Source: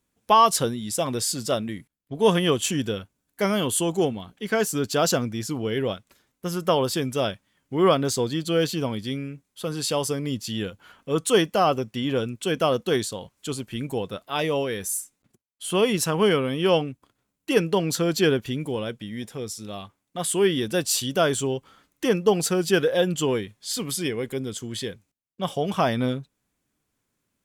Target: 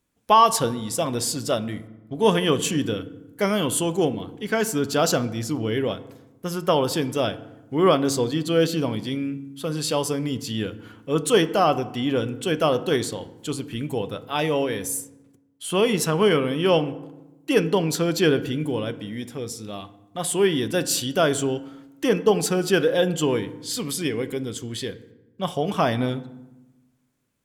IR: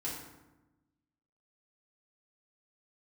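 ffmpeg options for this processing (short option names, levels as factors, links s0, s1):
-filter_complex "[0:a]asplit=2[s0][s1];[1:a]atrim=start_sample=2205,lowpass=4400[s2];[s1][s2]afir=irnorm=-1:irlink=0,volume=0.251[s3];[s0][s3]amix=inputs=2:normalize=0"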